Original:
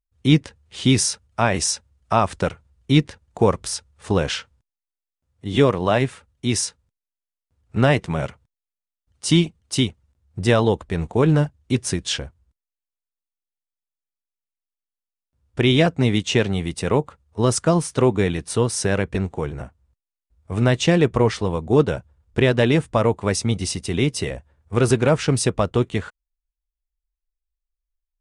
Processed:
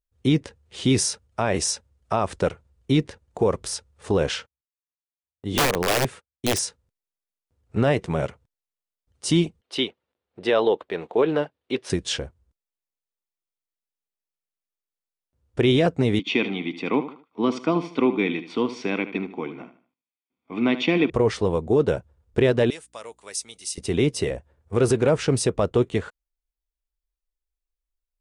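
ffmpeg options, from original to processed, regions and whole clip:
ffmpeg -i in.wav -filter_complex "[0:a]asettb=1/sr,asplit=3[link_01][link_02][link_03];[link_01]atrim=end=4.294[link_04];[link_02]atrim=start=4.29:end=6.59,asetpts=PTS-STARTPTS,afade=type=in:duration=0.004:curve=qsin,afade=type=out:start_time=2.296:duration=0.004:curve=qsin,agate=range=-32dB:threshold=-47dB:ratio=16:release=100:detection=peak,aeval=exprs='(mod(4.47*val(0)+1,2)-1)/4.47':channel_layout=same[link_05];[link_03]atrim=start=6.586[link_06];[link_04][link_05]acrossfade=duration=0.004:curve1=hsin:curve2=qsin[link_07];[link_07][link_06]acrossfade=duration=0.004:curve1=qsin:curve2=hsin,asettb=1/sr,asplit=3[link_08][link_09][link_10];[link_08]atrim=end=9.614[link_11];[link_09]atrim=start=9.61:end=11.9,asetpts=PTS-STARTPTS,afade=type=in:duration=0.004:curve=qsin,afade=type=out:start_time=2.286:duration=0.004:curve=qsin,highpass=370,highshelf=frequency=5100:width_type=q:width=1.5:gain=-12.5[link_12];[link_10]atrim=start=11.896[link_13];[link_11][link_12]acrossfade=duration=0.004:curve1=hsin:curve2=qsin[link_14];[link_14][link_13]acrossfade=duration=0.004:curve1=qsin:curve2=hsin,asettb=1/sr,asplit=3[link_15][link_16][link_17];[link_15]atrim=end=16.194[link_18];[link_16]atrim=start=16.19:end=21.1,asetpts=PTS-STARTPTS,afade=type=in:duration=0.004:curve=qsin,afade=type=out:start_time=4.906:duration=0.004:curve=qsin,highpass=frequency=240:width=0.5412,highpass=frequency=240:width=1.3066,equalizer=frequency=270:width_type=q:width=4:gain=4,equalizer=frequency=410:width_type=q:width=4:gain=-7,equalizer=frequency=890:width_type=q:width=4:gain=-5,equalizer=frequency=1300:width_type=q:width=4:gain=-7,equalizer=frequency=2600:width_type=q:width=4:gain=7,lowpass=frequency=3800:width=0.5412,lowpass=frequency=3800:width=1.3066,aecho=1:1:0.9:0.72,atrim=end_sample=216531,aecho=1:1:76|152|228:0.224|0.0716|0.0229,atrim=end_sample=216531[link_19];[link_17]atrim=start=21.096[link_20];[link_18][link_19]acrossfade=duration=0.004:curve1=hsin:curve2=qsin[link_21];[link_21][link_20]acrossfade=duration=0.004:curve1=qsin:curve2=hsin,asettb=1/sr,asplit=3[link_22][link_23][link_24];[link_22]atrim=end=22.704[link_25];[link_23]atrim=start=22.7:end=23.78,asetpts=PTS-STARTPTS,afade=type=in:duration=0.004:curve=qsin,afade=type=out:start_time=1.076:duration=0.004:curve=qsin,aderivative,aeval=exprs='val(0)+0.000447*(sin(2*PI*60*n/s)+sin(2*PI*2*60*n/s)/2+sin(2*PI*3*60*n/s)/3+sin(2*PI*4*60*n/s)/4+sin(2*PI*5*60*n/s)/5)':channel_layout=same[link_26];[link_24]atrim=start=23.776[link_27];[link_25][link_26]acrossfade=duration=0.004:curve1=hsin:curve2=qsin[link_28];[link_28][link_27]acrossfade=duration=0.004:curve1=qsin:curve2=hsin,equalizer=frequency=440:width_type=o:width=1.2:gain=6.5,alimiter=level_in=6dB:limit=-1dB:release=50:level=0:latency=1,volume=-9dB" out.wav

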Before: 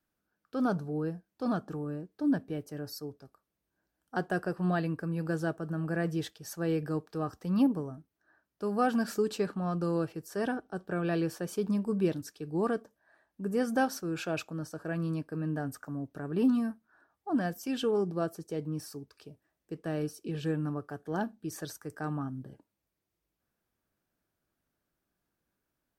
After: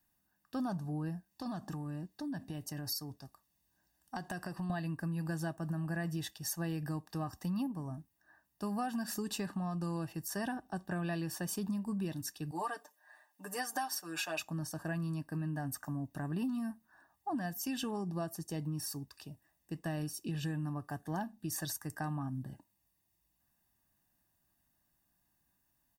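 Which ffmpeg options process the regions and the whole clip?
ffmpeg -i in.wav -filter_complex "[0:a]asettb=1/sr,asplit=3[link_01][link_02][link_03];[link_01]atrim=end=1.314[link_04];[link_02]atrim=start=1.31:end=4.7,asetpts=PTS-STARTPTS,afade=type=in:duration=0.004:curve=qsin,afade=type=out:start_time=3.386:duration=0.004:curve=qsin,equalizer=frequency=4700:width_type=o:width=1.5:gain=4.5,acompressor=threshold=-37dB:ratio=6:attack=3.2:release=140:knee=1:detection=peak[link_05];[link_03]atrim=start=4.696[link_06];[link_04][link_05]acrossfade=duration=0.004:curve1=hsin:curve2=qsin[link_07];[link_07][link_06]acrossfade=duration=0.004:curve1=qsin:curve2=hsin,asettb=1/sr,asplit=3[link_08][link_09][link_10];[link_08]atrim=end=12.514[link_11];[link_09]atrim=start=12.51:end=14.4,asetpts=PTS-STARTPTS,afade=type=in:duration=0.004:curve=qsin,afade=type=out:start_time=1.886:duration=0.004:curve=qsin,highpass=570,aecho=1:1:6.7:0.9,atrim=end_sample=83349[link_12];[link_10]atrim=start=14.396[link_13];[link_11][link_12]acrossfade=duration=0.004:curve1=hsin:curve2=qsin[link_14];[link_14][link_13]acrossfade=duration=0.004:curve1=qsin:curve2=hsin,highshelf=frequency=7200:gain=11,aecho=1:1:1.1:0.73,acompressor=threshold=-34dB:ratio=6" out.wav

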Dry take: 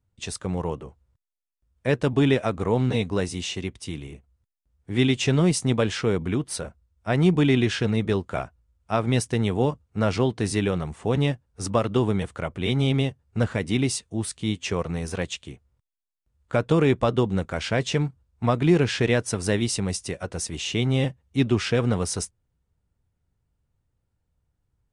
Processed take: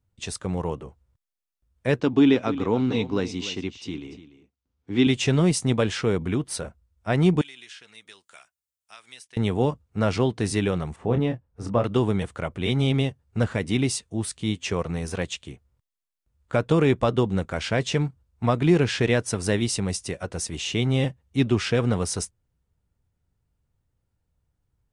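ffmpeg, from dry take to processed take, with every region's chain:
ffmpeg -i in.wav -filter_complex "[0:a]asettb=1/sr,asplit=3[link_01][link_02][link_03];[link_01]atrim=end=2.004[link_04];[link_02]atrim=start=2:end=5.07,asetpts=PTS-STARTPTS,afade=type=in:duration=0.004:curve=qsin,afade=type=out:start_time=3.066:duration=0.004:curve=qsin,highpass=110,equalizer=frequency=140:width_type=q:width=4:gain=-7,equalizer=frequency=280:width_type=q:width=4:gain=6,equalizer=frequency=610:width_type=q:width=4:gain=-6,equalizer=frequency=1800:width_type=q:width=4:gain=-4,lowpass=frequency=6200:width=0.5412,lowpass=frequency=6200:width=1.3066,aecho=1:1:293:0.178,atrim=end_sample=135387[link_05];[link_03]atrim=start=5.066[link_06];[link_04][link_05]acrossfade=duration=0.004:curve1=hsin:curve2=qsin[link_07];[link_07][link_06]acrossfade=duration=0.004:curve1=qsin:curve2=hsin,asettb=1/sr,asplit=3[link_08][link_09][link_10];[link_08]atrim=end=7.414[link_11];[link_09]atrim=start=7.41:end=9.37,asetpts=PTS-STARTPTS,afade=type=in:duration=0.004:curve=qsin,afade=type=out:start_time=1.956:duration=0.004:curve=qsin,aderivative,acrossover=split=1300|3700[link_12][link_13][link_14];[link_12]acompressor=threshold=-55dB:ratio=4[link_15];[link_13]acompressor=threshold=-44dB:ratio=4[link_16];[link_14]acompressor=threshold=-53dB:ratio=4[link_17];[link_15][link_16][link_17]amix=inputs=3:normalize=0[link_18];[link_10]atrim=start=9.366[link_19];[link_11][link_18]acrossfade=duration=0.004:curve1=hsin:curve2=qsin[link_20];[link_20][link_19]acrossfade=duration=0.004:curve1=qsin:curve2=hsin,asettb=1/sr,asplit=3[link_21][link_22][link_23];[link_21]atrim=end=10.964[link_24];[link_22]atrim=start=10.96:end=11.84,asetpts=PTS-STARTPTS,afade=type=in:duration=0.004:curve=qsin,afade=type=out:start_time=0.876:duration=0.004:curve=qsin,lowpass=frequency=1200:poles=1,asplit=2[link_25][link_26];[link_26]adelay=25,volume=-7dB[link_27];[link_25][link_27]amix=inputs=2:normalize=0,atrim=end_sample=38808[link_28];[link_23]atrim=start=11.836[link_29];[link_24][link_28]acrossfade=duration=0.004:curve1=hsin:curve2=qsin[link_30];[link_30][link_29]acrossfade=duration=0.004:curve1=qsin:curve2=hsin" out.wav

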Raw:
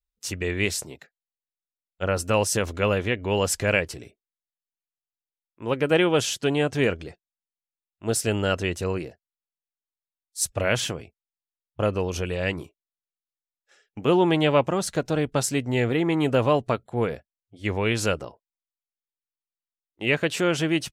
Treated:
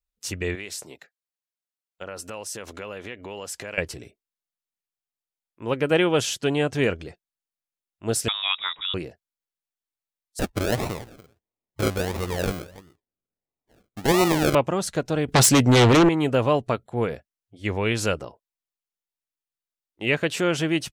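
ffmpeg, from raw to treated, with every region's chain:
ffmpeg -i in.wav -filter_complex "[0:a]asettb=1/sr,asplit=3[link_01][link_02][link_03];[link_01]atrim=end=0.554[link_04];[link_02]atrim=start=0.55:end=3.78,asetpts=PTS-STARTPTS,afade=type=in:duration=0.004:curve=qsin,afade=type=out:start_time=3.226:duration=0.004:curve=qsin,acompressor=threshold=-29dB:ratio=12:attack=3.2:release=140:knee=1:detection=peak,highpass=frequency=330:poles=1[link_05];[link_03]atrim=start=3.776[link_06];[link_04][link_05]acrossfade=duration=0.004:curve1=hsin:curve2=qsin[link_07];[link_07][link_06]acrossfade=duration=0.004:curve1=qsin:curve2=hsin,asettb=1/sr,asplit=3[link_08][link_09][link_10];[link_08]atrim=end=8.284[link_11];[link_09]atrim=start=8.28:end=8.94,asetpts=PTS-STARTPTS,afade=type=in:duration=0.004:curve=qsin,afade=type=out:start_time=0.656:duration=0.004:curve=qsin,highpass=frequency=320:poles=1,lowpass=frequency=3300:width_type=q:width=0.5098,lowpass=frequency=3300:width_type=q:width=0.6013,lowpass=frequency=3300:width_type=q:width=0.9,lowpass=frequency=3300:width_type=q:width=2.563,afreqshift=-3900[link_12];[link_10]atrim=start=8.936[link_13];[link_11][link_12]acrossfade=duration=0.004:curve1=hsin:curve2=qsin[link_14];[link_14][link_13]acrossfade=duration=0.004:curve1=qsin:curve2=hsin,asettb=1/sr,asplit=3[link_15][link_16][link_17];[link_15]atrim=end=10.394[link_18];[link_16]atrim=start=10.39:end=14.55,asetpts=PTS-STARTPTS,afade=type=in:duration=0.004:curve=qsin,afade=type=out:start_time=4.156:duration=0.004:curve=qsin,aecho=1:1:290:0.106,atrim=end_sample=183456,acrusher=samples=38:mix=1:aa=0.000001:lfo=1:lforange=22.8:lforate=1.5[link_19];[link_17]atrim=start=14.546[link_20];[link_18][link_19]acrossfade=duration=0.004:curve1=hsin:curve2=qsin[link_21];[link_21][link_20]acrossfade=duration=0.004:curve1=qsin:curve2=hsin,asettb=1/sr,asplit=3[link_22][link_23][link_24];[link_22]atrim=end=15.284[link_25];[link_23]atrim=start=15.28:end=16.09,asetpts=PTS-STARTPTS,afade=type=in:duration=0.004:curve=qsin,afade=type=out:start_time=0.806:duration=0.004:curve=qsin,highpass=42,aeval=exprs='0.266*sin(PI/2*3.16*val(0)/0.266)':channel_layout=same[link_26];[link_24]atrim=start=16.086[link_27];[link_25][link_26]acrossfade=duration=0.004:curve1=hsin:curve2=qsin[link_28];[link_28][link_27]acrossfade=duration=0.004:curve1=qsin:curve2=hsin" out.wav

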